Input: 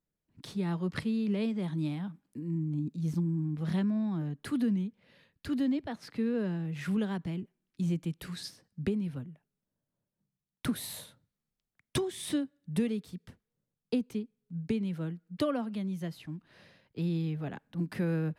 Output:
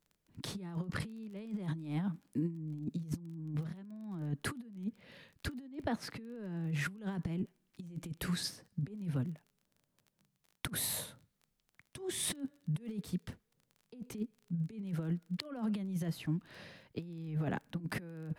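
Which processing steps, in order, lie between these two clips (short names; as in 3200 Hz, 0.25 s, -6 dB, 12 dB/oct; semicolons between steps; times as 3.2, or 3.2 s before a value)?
dynamic EQ 3700 Hz, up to -4 dB, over -59 dBFS, Q 1.1; negative-ratio compressor -37 dBFS, ratio -0.5; crackle 23/s -49 dBFS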